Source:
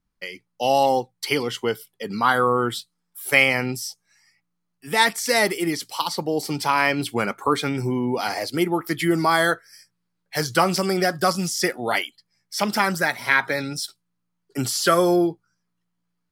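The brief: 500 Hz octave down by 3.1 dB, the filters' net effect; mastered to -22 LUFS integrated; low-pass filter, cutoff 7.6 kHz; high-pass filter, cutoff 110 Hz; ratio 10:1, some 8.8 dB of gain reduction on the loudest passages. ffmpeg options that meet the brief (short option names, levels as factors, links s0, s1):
-af "highpass=110,lowpass=7600,equalizer=f=500:t=o:g=-4,acompressor=threshold=0.0891:ratio=10,volume=1.88"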